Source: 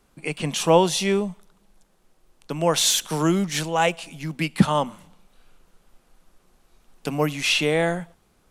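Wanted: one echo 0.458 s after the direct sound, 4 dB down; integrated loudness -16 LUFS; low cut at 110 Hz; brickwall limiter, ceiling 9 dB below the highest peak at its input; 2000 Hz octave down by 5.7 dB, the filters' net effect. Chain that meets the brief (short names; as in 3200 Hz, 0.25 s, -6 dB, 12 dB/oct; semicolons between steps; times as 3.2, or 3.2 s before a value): HPF 110 Hz; bell 2000 Hz -8 dB; limiter -13 dBFS; echo 0.458 s -4 dB; gain +8.5 dB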